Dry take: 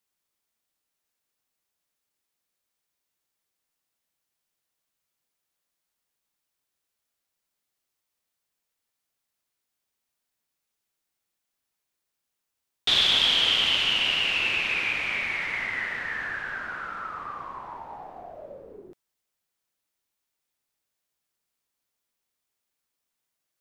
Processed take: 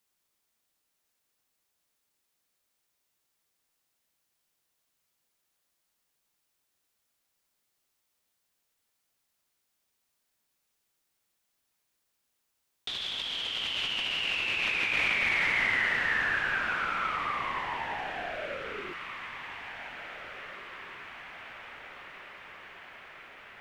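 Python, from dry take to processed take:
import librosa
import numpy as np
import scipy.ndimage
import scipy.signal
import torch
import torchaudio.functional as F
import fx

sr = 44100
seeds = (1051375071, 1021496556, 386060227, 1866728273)

p1 = fx.over_compress(x, sr, threshold_db=-30.0, ratio=-1.0)
y = p1 + fx.echo_diffused(p1, sr, ms=1821, feedback_pct=64, wet_db=-12.0, dry=0)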